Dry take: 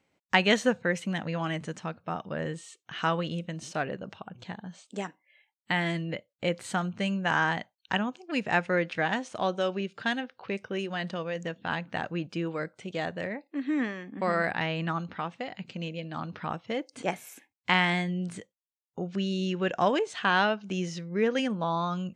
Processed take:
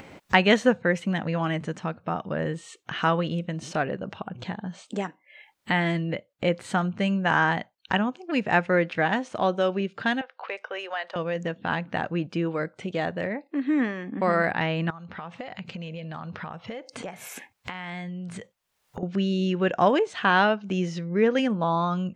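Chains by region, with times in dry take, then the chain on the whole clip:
10.21–11.16 HPF 580 Hz 24 dB/oct + high shelf 5100 Hz -9.5 dB
14.9–19.03 bell 300 Hz -10 dB 0.58 oct + compressor 4:1, threshold -46 dBFS
whole clip: high shelf 3700 Hz -9.5 dB; upward compressor, threshold -32 dBFS; gain +5 dB

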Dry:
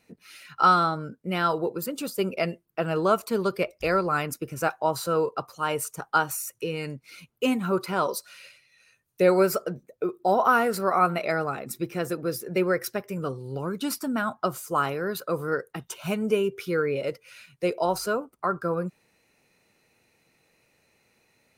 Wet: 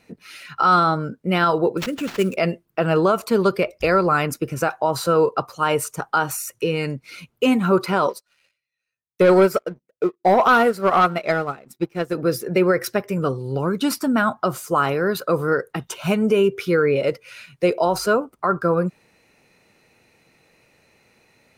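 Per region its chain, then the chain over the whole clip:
1.77–2.37 fixed phaser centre 2100 Hz, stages 4 + sample-rate reducer 10000 Hz, jitter 20%
8.09–12.15 sample leveller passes 2 + upward expander 2.5:1, over -29 dBFS
whole clip: high shelf 6600 Hz -7 dB; maximiser +16 dB; gain -7.5 dB

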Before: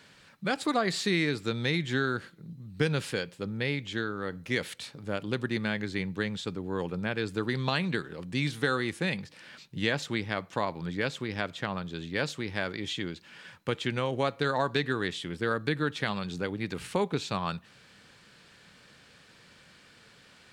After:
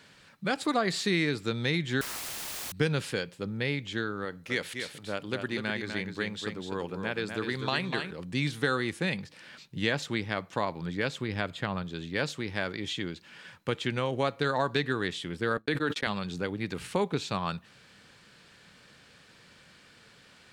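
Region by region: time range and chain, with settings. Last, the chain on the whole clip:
2.01–2.72 differentiator + requantised 6-bit, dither triangular + Doppler distortion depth 0.73 ms
4.25–8.11 low shelf 270 Hz -7 dB + echo 0.248 s -6.5 dB
11.2–11.84 low shelf 82 Hz +9.5 dB + notch 5800 Hz, Q 5.4
15.57–16.07 HPF 210 Hz + gate -39 dBFS, range -60 dB + sustainer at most 62 dB/s
whole clip: dry

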